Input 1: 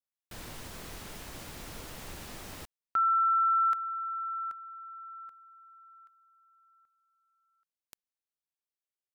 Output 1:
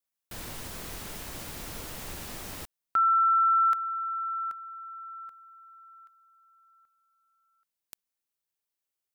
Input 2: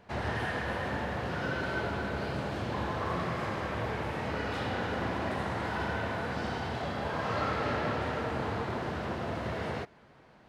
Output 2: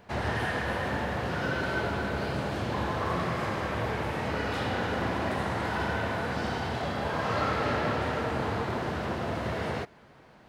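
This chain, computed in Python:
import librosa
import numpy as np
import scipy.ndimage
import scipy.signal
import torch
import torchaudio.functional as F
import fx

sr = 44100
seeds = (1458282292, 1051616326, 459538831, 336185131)

y = fx.high_shelf(x, sr, hz=9200.0, db=6.0)
y = y * librosa.db_to_amplitude(3.0)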